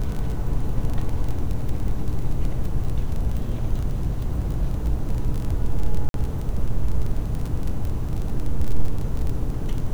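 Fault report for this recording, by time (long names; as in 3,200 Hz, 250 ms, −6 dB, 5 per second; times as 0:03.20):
surface crackle 22 per second −25 dBFS
0:06.09–0:06.14: drop-out 52 ms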